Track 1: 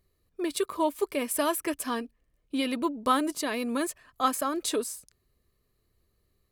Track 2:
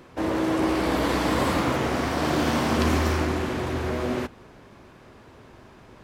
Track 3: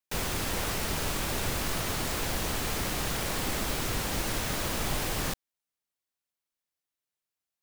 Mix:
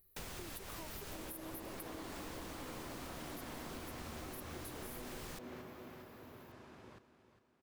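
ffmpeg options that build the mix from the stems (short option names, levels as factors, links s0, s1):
-filter_complex "[0:a]acompressor=threshold=0.0251:ratio=6,aexciter=amount=11.9:drive=5.3:freq=11000,volume=0.501,asplit=2[s0][s1];[1:a]highpass=78,adelay=950,volume=0.422,asplit=2[s2][s3];[s3]volume=0.237[s4];[2:a]adelay=50,volume=0.335[s5];[s1]apad=whole_len=338419[s6];[s5][s6]sidechaincompress=threshold=0.0158:ratio=3:attack=16:release=466[s7];[s0][s2]amix=inputs=2:normalize=0,acompressor=threshold=0.00447:ratio=2,volume=1[s8];[s4]aecho=0:1:404|808|1212|1616|2020|2424:1|0.45|0.202|0.0911|0.041|0.0185[s9];[s7][s8][s9]amix=inputs=3:normalize=0,acompressor=threshold=0.00708:ratio=10"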